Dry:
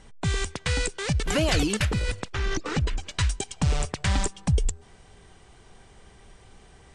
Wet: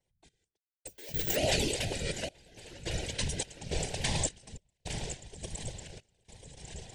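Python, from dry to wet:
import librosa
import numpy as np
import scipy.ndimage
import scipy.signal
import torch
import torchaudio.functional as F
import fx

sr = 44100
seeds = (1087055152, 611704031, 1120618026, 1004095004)

y = fx.reverse_delay_fb(x, sr, ms=551, feedback_pct=73, wet_db=-9.0)
y = fx.low_shelf(y, sr, hz=320.0, db=-6.5)
y = fx.fixed_phaser(y, sr, hz=500.0, stages=4)
y = y + 10.0 ** (-9.5 / 20.0) * np.pad(y, (int(862 * sr / 1000.0), 0))[:len(y)]
y = fx.resample_bad(y, sr, factor=2, down='filtered', up='zero_stuff', at=(0.87, 1.36))
y = fx.vibrato(y, sr, rate_hz=1.3, depth_cents=52.0)
y = fx.tremolo_random(y, sr, seeds[0], hz=3.5, depth_pct=100)
y = fx.whisperise(y, sr, seeds[1])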